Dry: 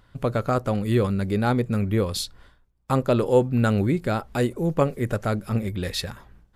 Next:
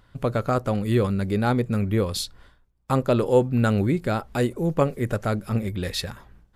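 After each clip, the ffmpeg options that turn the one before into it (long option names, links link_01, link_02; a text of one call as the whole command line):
ffmpeg -i in.wav -af anull out.wav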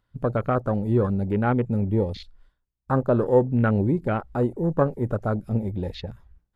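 ffmpeg -i in.wav -filter_complex "[0:a]afwtdn=0.0282,acrossover=split=3100[link_01][link_02];[link_02]acompressor=threshold=-58dB:ratio=4:attack=1:release=60[link_03];[link_01][link_03]amix=inputs=2:normalize=0" out.wav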